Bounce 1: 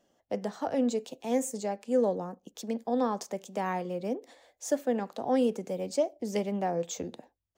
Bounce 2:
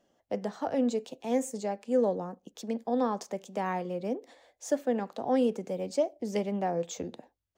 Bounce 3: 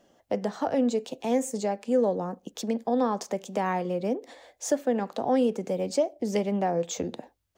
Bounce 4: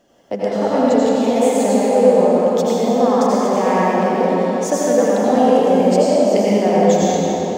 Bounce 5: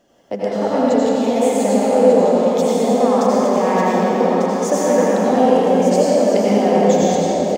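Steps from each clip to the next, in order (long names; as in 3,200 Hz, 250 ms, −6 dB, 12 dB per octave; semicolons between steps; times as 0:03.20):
high-shelf EQ 6,900 Hz −6.5 dB
downward compressor 1.5 to 1, threshold −39 dBFS, peak gain reduction 6.5 dB; level +8.5 dB
convolution reverb RT60 4.5 s, pre-delay 74 ms, DRR −8.5 dB; level +4 dB
single-tap delay 1,195 ms −6 dB; level −1 dB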